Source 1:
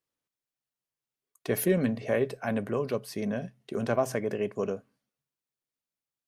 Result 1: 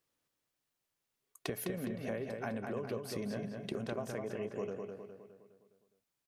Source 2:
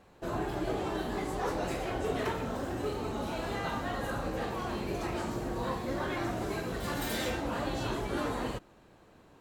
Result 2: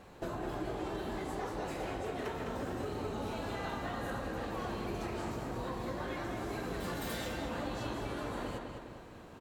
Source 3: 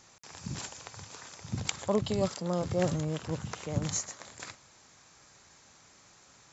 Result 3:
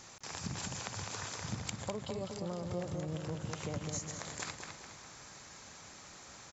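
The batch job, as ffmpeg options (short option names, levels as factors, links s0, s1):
-filter_complex "[0:a]acompressor=threshold=0.00891:ratio=16,asplit=2[s0][s1];[s1]adelay=206,lowpass=f=4500:p=1,volume=0.596,asplit=2[s2][s3];[s3]adelay=206,lowpass=f=4500:p=1,volume=0.49,asplit=2[s4][s5];[s5]adelay=206,lowpass=f=4500:p=1,volume=0.49,asplit=2[s6][s7];[s7]adelay=206,lowpass=f=4500:p=1,volume=0.49,asplit=2[s8][s9];[s9]adelay=206,lowpass=f=4500:p=1,volume=0.49,asplit=2[s10][s11];[s11]adelay=206,lowpass=f=4500:p=1,volume=0.49[s12];[s0][s2][s4][s6][s8][s10][s12]amix=inputs=7:normalize=0,volume=1.78"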